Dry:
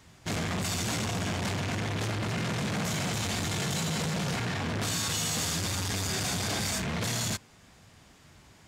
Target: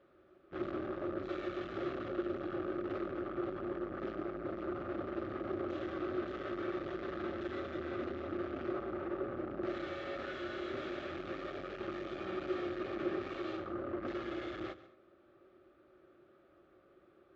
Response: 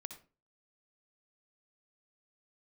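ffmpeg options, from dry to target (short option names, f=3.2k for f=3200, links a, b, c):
-filter_complex "[0:a]asplit=3[a][b][c];[a]bandpass=f=730:t=q:w=8,volume=0dB[d];[b]bandpass=f=1.09k:t=q:w=8,volume=-6dB[e];[c]bandpass=f=2.44k:t=q:w=8,volume=-9dB[f];[d][e][f]amix=inputs=3:normalize=0,asetrate=22050,aresample=44100,asplit=2[g][h];[1:a]atrim=start_sample=2205,adelay=138[i];[h][i]afir=irnorm=-1:irlink=0,volume=-11.5dB[j];[g][j]amix=inputs=2:normalize=0,volume=6dB"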